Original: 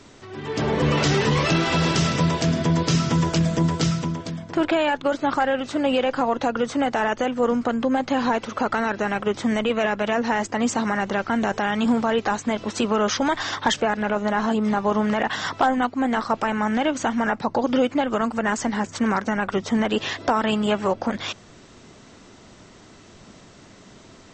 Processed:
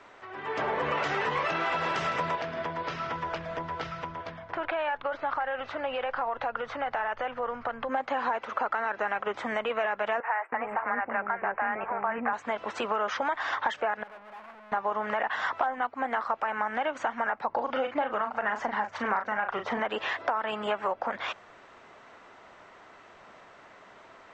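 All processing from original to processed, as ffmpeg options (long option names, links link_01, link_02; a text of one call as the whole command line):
ffmpeg -i in.wav -filter_complex "[0:a]asettb=1/sr,asplit=3[link_01][link_02][link_03];[link_01]atrim=end=2.354[link_04];[link_02]atrim=start=2.35:end=7.89,asetpts=PTS-STARTPTS,afade=type=in:duration=0.004:curve=qsin,afade=type=out:start_time=5.536:duration=0.004:curve=qsin,lowpass=frequency=5500:width=0.5412,lowpass=frequency=5500:width=1.3066,asubboost=boost=9.5:cutoff=87,acompressor=threshold=-25dB:ratio=2.5:attack=3.2:release=140:knee=1:detection=peak[link_05];[link_03]atrim=start=7.886[link_06];[link_04][link_05]acrossfade=duration=0.004:curve1=hsin:curve2=qsin[link_07];[link_07][link_06]acrossfade=duration=0.004:curve1=qsin:curve2=hsin,asettb=1/sr,asplit=3[link_08][link_09][link_10];[link_08]atrim=end=10.204[link_11];[link_09]atrim=start=10.2:end=12.33,asetpts=PTS-STARTPTS,afade=type=in:duration=0.004:curve=qsin,afade=type=out:start_time=2.126:duration=0.004:curve=qsin,asuperstop=centerf=5100:order=12:qfactor=0.74,acrossover=split=530[link_12][link_13];[link_12]adelay=320[link_14];[link_14][link_13]amix=inputs=2:normalize=0,atrim=end_sample=93933[link_15];[link_10]atrim=start=12.326[link_16];[link_11][link_15]acrossfade=duration=0.004:curve1=hsin:curve2=qsin[link_17];[link_17][link_16]acrossfade=duration=0.004:curve1=qsin:curve2=hsin,asettb=1/sr,asplit=3[link_18][link_19][link_20];[link_18]atrim=end=14.034[link_21];[link_19]atrim=start=14.03:end=14.72,asetpts=PTS-STARTPTS,afade=type=in:duration=0.004:curve=qsin,afade=type=out:start_time=0.686:duration=0.004:curve=qsin,lowpass=1100,bandreject=frequency=60:width_type=h:width=6,bandreject=frequency=120:width_type=h:width=6,bandreject=frequency=180:width_type=h:width=6,bandreject=frequency=240:width_type=h:width=6,bandreject=frequency=300:width_type=h:width=6,aeval=exprs='(tanh(141*val(0)+0.15)-tanh(0.15))/141':channel_layout=same[link_22];[link_20]atrim=start=14.716[link_23];[link_21][link_22]acrossfade=duration=0.004:curve1=hsin:curve2=qsin[link_24];[link_24][link_23]acrossfade=duration=0.004:curve1=qsin:curve2=hsin,asettb=1/sr,asplit=3[link_25][link_26][link_27];[link_25]atrim=end=17.494[link_28];[link_26]atrim=start=17.49:end=19.8,asetpts=PTS-STARTPTS,afade=type=in:duration=0.004:curve=qsin,afade=type=out:start_time=2.306:duration=0.004:curve=qsin,lowpass=frequency=6300:width=0.5412,lowpass=frequency=6300:width=1.3066,aphaser=in_gain=1:out_gain=1:delay=1.4:decay=0.3:speed=1.8:type=sinusoidal,asplit=2[link_29][link_30];[link_30]adelay=38,volume=-8dB[link_31];[link_29][link_31]amix=inputs=2:normalize=0,atrim=end_sample=101871[link_32];[link_27]atrim=start=19.796[link_33];[link_28][link_32]acrossfade=duration=0.004:curve1=hsin:curve2=qsin[link_34];[link_34][link_33]acrossfade=duration=0.004:curve1=qsin:curve2=hsin,acrossover=split=550 2400:gain=0.0891 1 0.0891[link_35][link_36][link_37];[link_35][link_36][link_37]amix=inputs=3:normalize=0,acompressor=threshold=-29dB:ratio=4,volume=3dB" out.wav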